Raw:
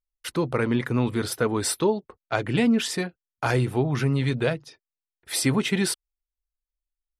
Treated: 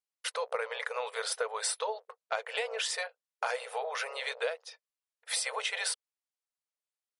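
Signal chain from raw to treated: octaver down 2 oct, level +1 dB; brick-wall FIR band-pass 440–11000 Hz; compressor 4:1, threshold -30 dBFS, peak gain reduction 9.5 dB

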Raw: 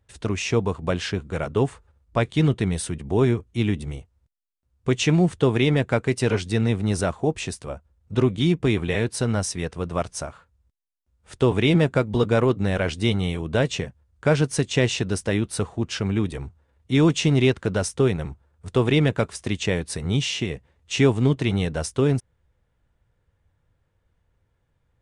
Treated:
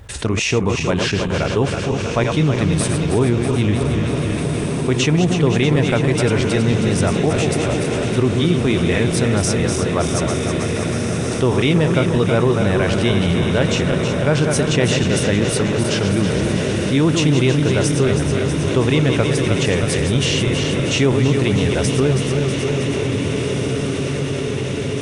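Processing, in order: regenerating reverse delay 0.16 s, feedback 79%, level -7 dB; diffused feedback echo 1.801 s, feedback 60%, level -9.5 dB; fast leveller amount 50%

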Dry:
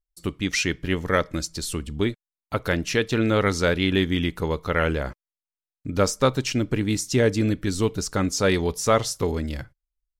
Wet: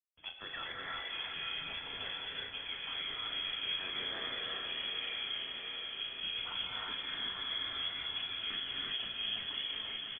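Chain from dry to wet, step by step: bin magnitudes rounded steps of 15 dB; gate with hold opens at -35 dBFS; steep high-pass 460 Hz 48 dB/oct; tilt -2.5 dB/oct; reverse; compressor, threshold -34 dBFS, peak gain reduction 18.5 dB; reverse; limiter -29 dBFS, peak gain reduction 6 dB; flange 1.4 Hz, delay 9.5 ms, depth 3.4 ms, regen -39%; doubler 36 ms -7.5 dB; on a send: swung echo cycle 0.705 s, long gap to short 3:1, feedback 65%, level -8.5 dB; on the sum: non-linear reverb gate 0.4 s rising, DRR -4 dB; inverted band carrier 3800 Hz; three-band squash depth 40%; gain -2 dB

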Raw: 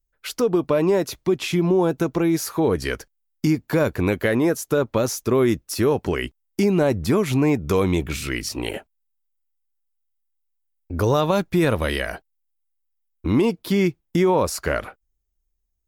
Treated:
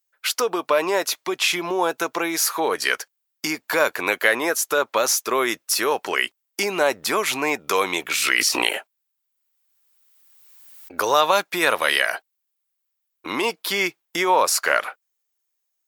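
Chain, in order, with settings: HPF 870 Hz 12 dB/oct; 8.11–10.92 backwards sustainer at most 21 dB/s; gain +8.5 dB

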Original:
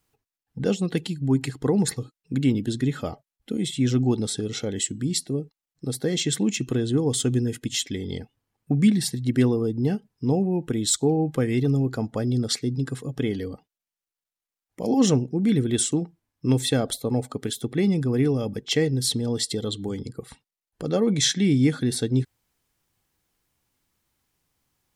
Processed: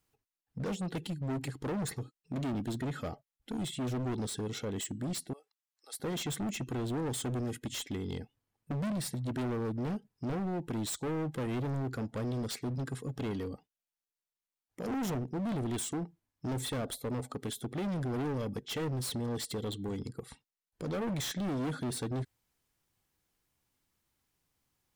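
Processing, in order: 5.33–6 HPF 820 Hz 24 dB/oct; overloaded stage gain 26.5 dB; dynamic EQ 5200 Hz, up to -5 dB, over -47 dBFS, Q 0.94; gain -5.5 dB

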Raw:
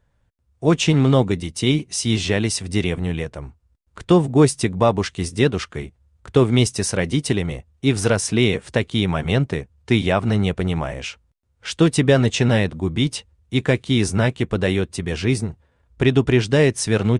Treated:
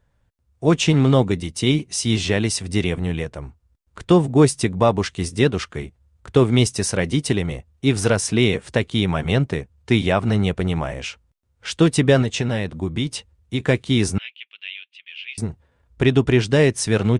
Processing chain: 12.22–13.6 compressor, threshold -19 dBFS, peak gain reduction 6.5 dB; 14.18–15.38 Butterworth band-pass 2800 Hz, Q 2.9

